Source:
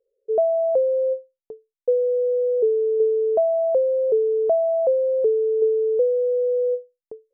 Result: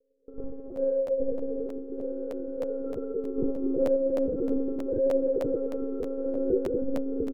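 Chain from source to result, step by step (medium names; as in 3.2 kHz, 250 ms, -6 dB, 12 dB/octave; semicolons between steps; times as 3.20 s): single-diode clipper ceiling -27.5 dBFS; Chebyshev low-pass 500 Hz, order 8; reverb removal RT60 1.4 s; dynamic bell 190 Hz, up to -4 dB, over -52 dBFS, Q 3; compressor with a negative ratio -35 dBFS, ratio -1; wow and flutter 24 cents; on a send: frequency-shifting echo 421 ms, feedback 56%, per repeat -56 Hz, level -4.5 dB; on the sum: Schroeder reverb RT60 1.8 s, combs from 31 ms, DRR -7.5 dB; monotone LPC vocoder at 8 kHz 270 Hz; crackling interface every 0.31 s, samples 512, repeat, from 0.75 s; trim +2 dB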